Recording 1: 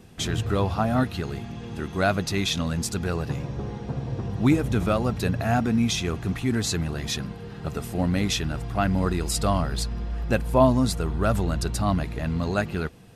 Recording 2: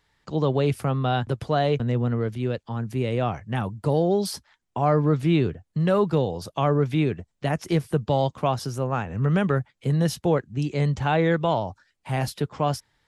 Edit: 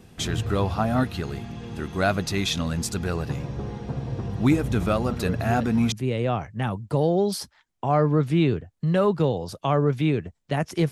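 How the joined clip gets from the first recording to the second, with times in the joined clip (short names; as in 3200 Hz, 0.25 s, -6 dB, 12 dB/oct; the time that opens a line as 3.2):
recording 1
5.06 add recording 2 from 1.99 s 0.86 s -7 dB
5.92 switch to recording 2 from 2.85 s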